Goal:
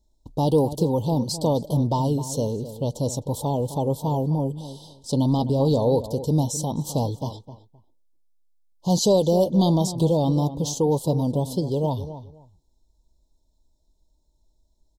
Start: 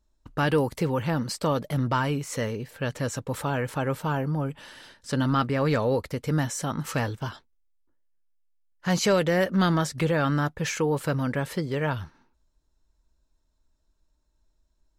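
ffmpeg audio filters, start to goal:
-filter_complex "[0:a]asuperstop=centerf=1800:order=12:qfactor=0.74,asplit=2[a][b];[b]adelay=259,lowpass=f=1.9k:p=1,volume=-12.5dB,asplit=2[c][d];[d]adelay=259,lowpass=f=1.9k:p=1,volume=0.2[e];[a][c][e]amix=inputs=3:normalize=0,volume=4dB"

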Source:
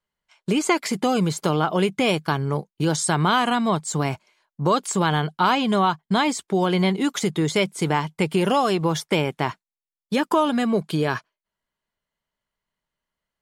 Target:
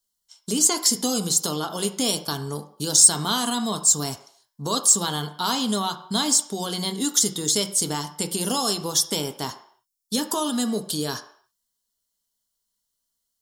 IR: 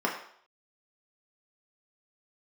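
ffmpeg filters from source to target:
-filter_complex "[0:a]bass=f=250:g=9,treble=f=4k:g=-5,aexciter=amount=14:drive=9.2:freq=3.8k,asplit=2[a][b];[1:a]atrim=start_sample=2205,afade=t=out:st=0.38:d=0.01,atrim=end_sample=17199[c];[b][c]afir=irnorm=-1:irlink=0,volume=-11.5dB[d];[a][d]amix=inputs=2:normalize=0,volume=-13dB"

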